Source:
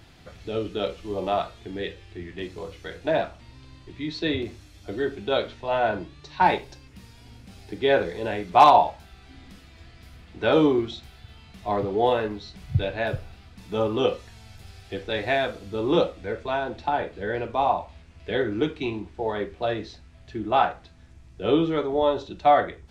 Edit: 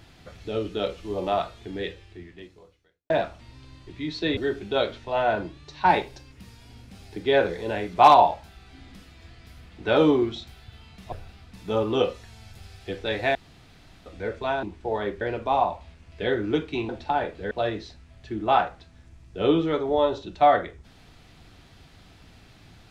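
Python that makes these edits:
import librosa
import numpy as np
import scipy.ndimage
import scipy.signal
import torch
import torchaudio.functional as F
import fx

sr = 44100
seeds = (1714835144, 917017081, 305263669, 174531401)

y = fx.edit(x, sr, fx.fade_out_span(start_s=1.88, length_s=1.22, curve='qua'),
    fx.cut(start_s=4.37, length_s=0.56),
    fx.cut(start_s=11.68, length_s=1.48),
    fx.room_tone_fill(start_s=15.39, length_s=0.71),
    fx.swap(start_s=16.67, length_s=0.62, other_s=18.97, other_length_s=0.58), tone=tone)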